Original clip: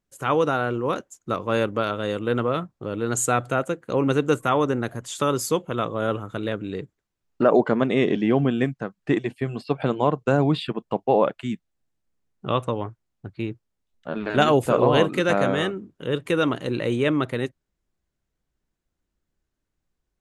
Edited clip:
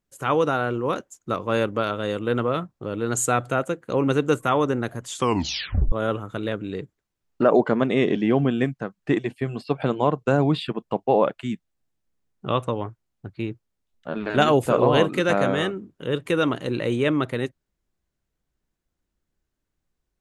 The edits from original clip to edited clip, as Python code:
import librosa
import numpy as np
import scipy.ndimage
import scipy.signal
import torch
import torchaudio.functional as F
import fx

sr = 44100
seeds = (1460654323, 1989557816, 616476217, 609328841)

y = fx.edit(x, sr, fx.tape_stop(start_s=5.15, length_s=0.77), tone=tone)